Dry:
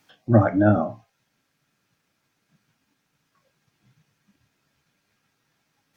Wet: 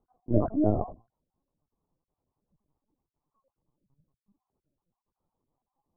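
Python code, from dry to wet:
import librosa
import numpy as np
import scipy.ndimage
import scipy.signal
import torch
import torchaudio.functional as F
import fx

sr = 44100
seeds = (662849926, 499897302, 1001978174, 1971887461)

y = fx.spec_dropout(x, sr, seeds[0], share_pct=30)
y = scipy.signal.sosfilt(scipy.signal.cheby1(5, 1.0, [120.0, 1100.0], 'bandpass', fs=sr, output='sos'), y)
y = fx.lpc_vocoder(y, sr, seeds[1], excitation='pitch_kept', order=10)
y = y * 10.0 ** (-5.0 / 20.0)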